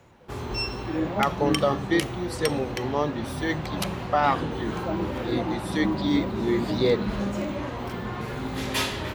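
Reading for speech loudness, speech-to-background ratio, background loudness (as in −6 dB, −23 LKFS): −27.0 LKFS, 4.0 dB, −31.0 LKFS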